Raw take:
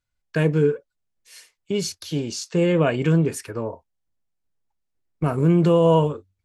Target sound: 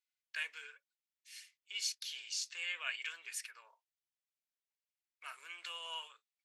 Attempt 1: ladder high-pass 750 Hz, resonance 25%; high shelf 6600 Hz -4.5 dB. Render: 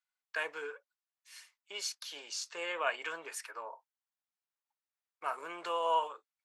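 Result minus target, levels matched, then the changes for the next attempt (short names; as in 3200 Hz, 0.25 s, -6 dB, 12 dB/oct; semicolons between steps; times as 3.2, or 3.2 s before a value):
1000 Hz band +14.0 dB
change: ladder high-pass 1700 Hz, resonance 25%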